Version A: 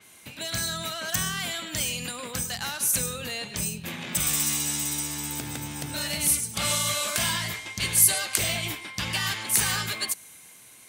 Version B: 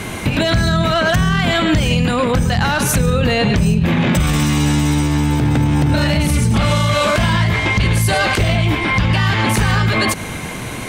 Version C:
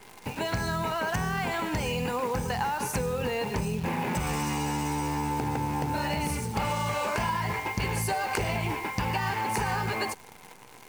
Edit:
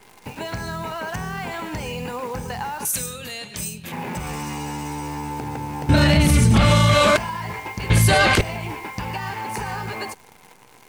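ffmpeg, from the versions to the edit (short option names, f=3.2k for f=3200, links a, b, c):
-filter_complex "[1:a]asplit=2[a][b];[2:a]asplit=4[c][d][e][f];[c]atrim=end=2.852[g];[0:a]atrim=start=2.848:end=3.922[h];[d]atrim=start=3.918:end=5.892[i];[a]atrim=start=5.888:end=7.172[j];[e]atrim=start=7.168:end=7.902[k];[b]atrim=start=7.898:end=8.412[l];[f]atrim=start=8.408[m];[g][h]acrossfade=d=0.004:c1=hsin:c2=hsin[n];[n][i]acrossfade=d=0.004:c1=hsin:c2=hsin[o];[o][j]acrossfade=d=0.004:c1=hsin:c2=hsin[p];[p][k]acrossfade=d=0.004:c1=hsin:c2=hsin[q];[q][l]acrossfade=d=0.004:c1=hsin:c2=hsin[r];[r][m]acrossfade=d=0.004:c1=hsin:c2=hsin"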